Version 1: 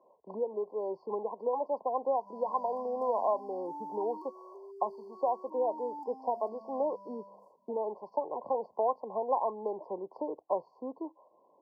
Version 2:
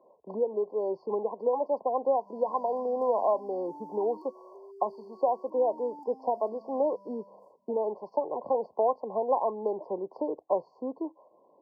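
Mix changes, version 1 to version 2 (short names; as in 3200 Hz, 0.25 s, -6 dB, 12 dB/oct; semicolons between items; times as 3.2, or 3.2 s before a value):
speech +5.5 dB; master: add bell 980 Hz -5 dB 0.77 oct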